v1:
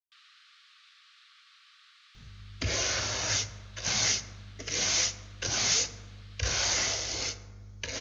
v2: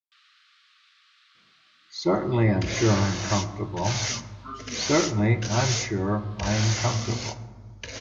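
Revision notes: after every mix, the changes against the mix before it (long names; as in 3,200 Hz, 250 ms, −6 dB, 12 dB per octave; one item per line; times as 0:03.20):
speech: unmuted
master: add high-shelf EQ 5,100 Hz −5.5 dB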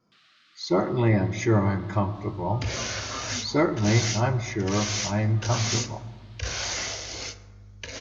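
speech: entry −1.35 s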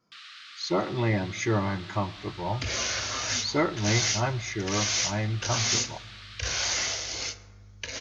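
speech: send −9.5 dB
first sound +11.5 dB
master: add tilt shelving filter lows −3 dB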